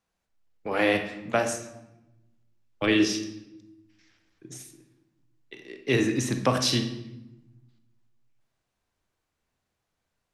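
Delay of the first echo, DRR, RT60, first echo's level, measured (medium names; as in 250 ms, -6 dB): no echo, 6.0 dB, 0.95 s, no echo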